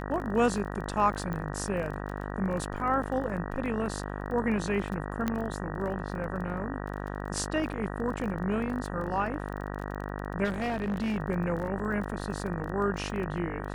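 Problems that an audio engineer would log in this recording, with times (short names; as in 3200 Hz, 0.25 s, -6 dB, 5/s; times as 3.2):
buzz 50 Hz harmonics 38 -36 dBFS
crackle 21/s -36 dBFS
1.33 pop -23 dBFS
5.28 pop -15 dBFS
10.44–11.17 clipped -26.5 dBFS
11.79–11.8 gap 5.1 ms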